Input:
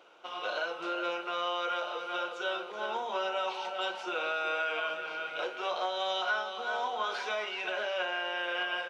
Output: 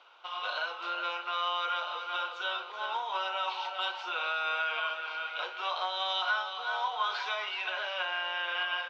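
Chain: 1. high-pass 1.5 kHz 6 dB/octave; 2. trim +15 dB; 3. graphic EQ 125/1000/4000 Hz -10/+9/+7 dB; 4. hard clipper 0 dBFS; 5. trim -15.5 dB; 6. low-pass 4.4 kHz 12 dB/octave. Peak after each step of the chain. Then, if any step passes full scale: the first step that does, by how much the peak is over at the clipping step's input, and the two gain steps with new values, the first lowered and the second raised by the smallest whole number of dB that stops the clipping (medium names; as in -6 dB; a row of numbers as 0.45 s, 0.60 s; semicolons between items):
-24.0 dBFS, -9.0 dBFS, -3.5 dBFS, -3.5 dBFS, -19.0 dBFS, -19.5 dBFS; nothing clips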